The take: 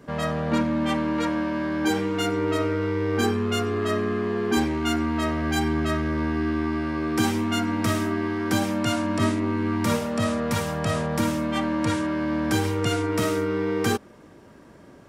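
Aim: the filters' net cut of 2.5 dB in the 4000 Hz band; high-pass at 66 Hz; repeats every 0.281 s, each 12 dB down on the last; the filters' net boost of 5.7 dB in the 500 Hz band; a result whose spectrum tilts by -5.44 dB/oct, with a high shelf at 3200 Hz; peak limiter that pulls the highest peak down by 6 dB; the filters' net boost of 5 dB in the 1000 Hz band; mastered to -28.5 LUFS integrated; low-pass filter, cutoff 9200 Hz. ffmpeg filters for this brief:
-af "highpass=66,lowpass=9.2k,equalizer=f=500:t=o:g=6,equalizer=f=1k:t=o:g=4.5,highshelf=f=3.2k:g=5,equalizer=f=4k:t=o:g=-8,alimiter=limit=-13dB:level=0:latency=1,aecho=1:1:281|562|843:0.251|0.0628|0.0157,volume=-6dB"

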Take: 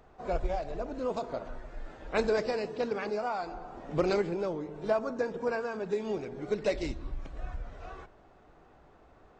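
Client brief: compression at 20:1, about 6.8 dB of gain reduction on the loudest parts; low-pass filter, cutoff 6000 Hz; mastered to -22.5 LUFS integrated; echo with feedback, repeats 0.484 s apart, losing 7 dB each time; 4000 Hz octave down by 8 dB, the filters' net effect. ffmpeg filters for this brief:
-af "lowpass=6k,equalizer=f=4k:t=o:g=-9,acompressor=threshold=-30dB:ratio=20,aecho=1:1:484|968|1452|1936|2420:0.447|0.201|0.0905|0.0407|0.0183,volume=14dB"

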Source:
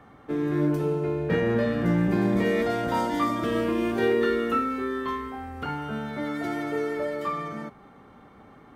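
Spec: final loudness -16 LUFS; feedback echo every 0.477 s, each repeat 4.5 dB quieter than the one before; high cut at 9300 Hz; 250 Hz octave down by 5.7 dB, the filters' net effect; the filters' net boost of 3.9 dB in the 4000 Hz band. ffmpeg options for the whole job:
-af "lowpass=9.3k,equalizer=f=250:t=o:g=-8,equalizer=f=4k:t=o:g=5.5,aecho=1:1:477|954|1431|1908|2385|2862|3339|3816|4293:0.596|0.357|0.214|0.129|0.0772|0.0463|0.0278|0.0167|0.01,volume=11.5dB"

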